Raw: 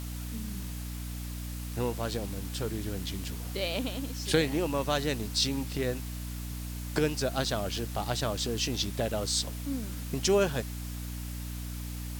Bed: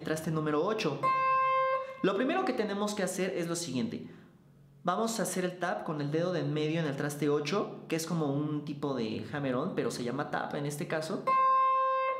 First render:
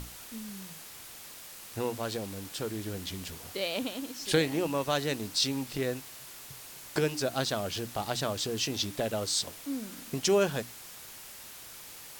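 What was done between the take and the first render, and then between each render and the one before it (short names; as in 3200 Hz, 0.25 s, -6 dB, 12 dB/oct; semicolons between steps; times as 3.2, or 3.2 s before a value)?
notches 60/120/180/240/300 Hz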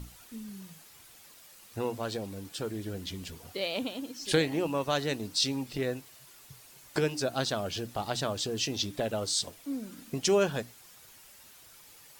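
denoiser 9 dB, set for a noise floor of -47 dBFS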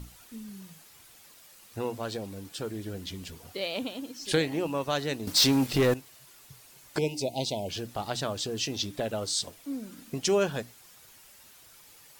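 5.27–5.94 sample leveller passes 3; 6.98–7.69 brick-wall FIR band-stop 1000–2000 Hz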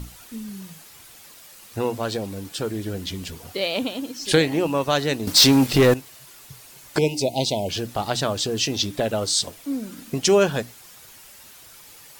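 gain +8 dB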